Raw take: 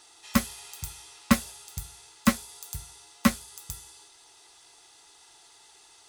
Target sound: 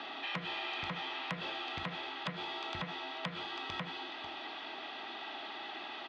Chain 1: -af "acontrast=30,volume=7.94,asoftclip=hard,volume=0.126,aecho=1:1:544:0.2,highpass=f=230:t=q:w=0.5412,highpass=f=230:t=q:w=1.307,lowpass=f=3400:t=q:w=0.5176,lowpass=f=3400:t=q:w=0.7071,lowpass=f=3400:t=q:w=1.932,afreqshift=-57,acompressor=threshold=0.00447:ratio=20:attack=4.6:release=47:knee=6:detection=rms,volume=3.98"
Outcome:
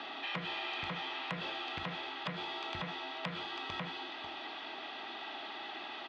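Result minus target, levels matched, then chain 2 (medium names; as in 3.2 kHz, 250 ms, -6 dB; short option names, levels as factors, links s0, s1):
overload inside the chain: distortion +7 dB
-af "acontrast=30,volume=3.55,asoftclip=hard,volume=0.282,aecho=1:1:544:0.2,highpass=f=230:t=q:w=0.5412,highpass=f=230:t=q:w=1.307,lowpass=f=3400:t=q:w=0.5176,lowpass=f=3400:t=q:w=0.7071,lowpass=f=3400:t=q:w=1.932,afreqshift=-57,acompressor=threshold=0.00447:ratio=20:attack=4.6:release=47:knee=6:detection=rms,volume=3.98"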